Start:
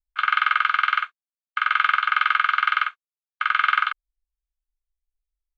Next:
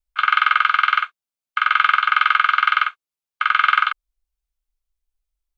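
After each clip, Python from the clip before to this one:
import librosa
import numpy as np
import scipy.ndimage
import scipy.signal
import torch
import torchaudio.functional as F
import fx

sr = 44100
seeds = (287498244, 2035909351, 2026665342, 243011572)

y = fx.peak_eq(x, sr, hz=1800.0, db=-4.5, octaves=0.25)
y = y * 10.0 ** (4.5 / 20.0)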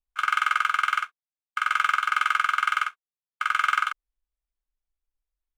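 y = scipy.ndimage.median_filter(x, 9, mode='constant')
y = y * 10.0 ** (-6.5 / 20.0)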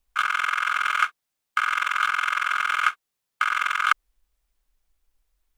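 y = fx.over_compress(x, sr, threshold_db=-29.0, ratio=-0.5)
y = y * 10.0 ** (7.5 / 20.0)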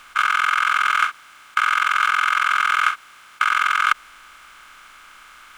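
y = fx.bin_compress(x, sr, power=0.4)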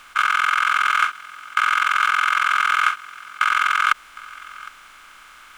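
y = x + 10.0 ** (-20.0 / 20.0) * np.pad(x, (int(760 * sr / 1000.0), 0))[:len(x)]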